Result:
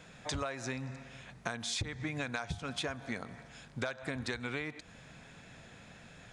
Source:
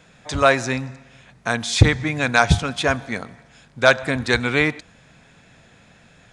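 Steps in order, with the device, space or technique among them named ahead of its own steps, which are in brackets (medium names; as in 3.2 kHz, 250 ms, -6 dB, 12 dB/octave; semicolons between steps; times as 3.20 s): serial compression, leveller first (compression 2.5:1, threshold -20 dBFS, peak gain reduction 10 dB; compression 6:1, threshold -32 dBFS, peak gain reduction 17 dB); trim -2.5 dB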